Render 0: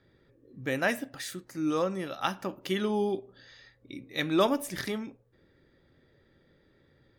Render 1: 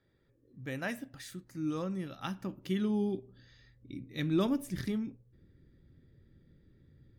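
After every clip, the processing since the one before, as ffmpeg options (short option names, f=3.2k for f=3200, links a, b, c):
-af "asubboost=boost=7.5:cutoff=250,volume=-9dB"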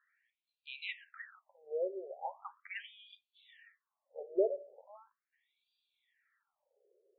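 -af "afftfilt=real='re*between(b*sr/1024,490*pow(3400/490,0.5+0.5*sin(2*PI*0.39*pts/sr))/1.41,490*pow(3400/490,0.5+0.5*sin(2*PI*0.39*pts/sr))*1.41)':imag='im*between(b*sr/1024,490*pow(3400/490,0.5+0.5*sin(2*PI*0.39*pts/sr))/1.41,490*pow(3400/490,0.5+0.5*sin(2*PI*0.39*pts/sr))*1.41)':win_size=1024:overlap=0.75,volume=6dB"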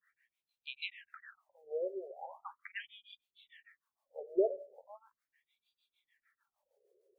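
-filter_complex "[0:a]acrossover=split=460[a][b];[a]aeval=exprs='val(0)*(1-1/2+1/2*cos(2*PI*6.6*n/s))':c=same[c];[b]aeval=exprs='val(0)*(1-1/2-1/2*cos(2*PI*6.6*n/s))':c=same[d];[c][d]amix=inputs=2:normalize=0,volume=5.5dB"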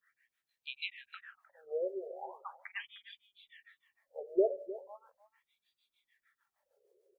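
-af "aecho=1:1:306:0.168,volume=1.5dB"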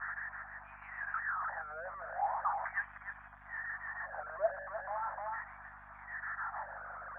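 -af "aeval=exprs='val(0)+0.5*0.015*sgn(val(0))':c=same,asuperpass=centerf=1100:order=12:qfactor=1,aeval=exprs='val(0)+0.000398*(sin(2*PI*50*n/s)+sin(2*PI*2*50*n/s)/2+sin(2*PI*3*50*n/s)/3+sin(2*PI*4*50*n/s)/4+sin(2*PI*5*50*n/s)/5)':c=same,volume=6.5dB"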